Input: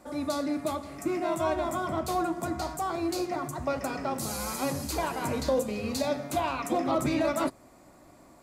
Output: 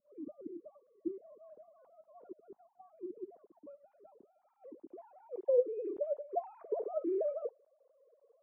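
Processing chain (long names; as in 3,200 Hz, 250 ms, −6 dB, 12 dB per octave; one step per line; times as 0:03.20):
three sine waves on the formant tracks
low-pass filter sweep 220 Hz → 450 Hz, 0:04.42–0:05.71
level −9 dB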